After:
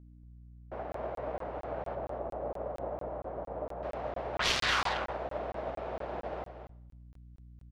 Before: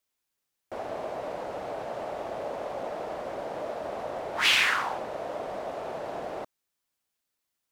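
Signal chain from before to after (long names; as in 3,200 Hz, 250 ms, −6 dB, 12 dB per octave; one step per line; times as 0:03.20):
phase distortion by the signal itself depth 0.34 ms
mains hum 60 Hz, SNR 12 dB
low-pass filter 2,000 Hz 12 dB per octave, from 0:01.95 1,000 Hz, from 0:03.83 3,200 Hz
single-tap delay 235 ms −6.5 dB
four-comb reverb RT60 0.82 s, combs from 32 ms, DRR 18 dB
regular buffer underruns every 0.23 s, samples 1,024, zero, from 0:00.92
expander for the loud parts 1.5 to 1, over −42 dBFS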